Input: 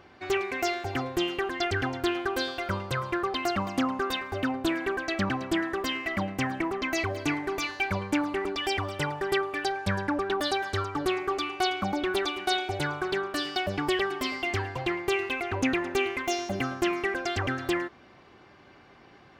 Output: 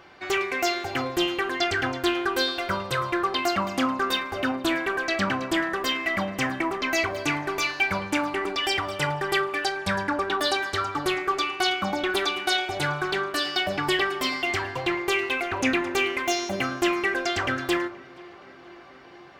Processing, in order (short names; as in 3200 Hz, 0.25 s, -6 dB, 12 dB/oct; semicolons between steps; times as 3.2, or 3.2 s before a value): low shelf 460 Hz -8 dB; tape echo 0.474 s, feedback 87%, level -22.5 dB, low-pass 2200 Hz; shoebox room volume 150 m³, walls furnished, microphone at 0.71 m; gain +5 dB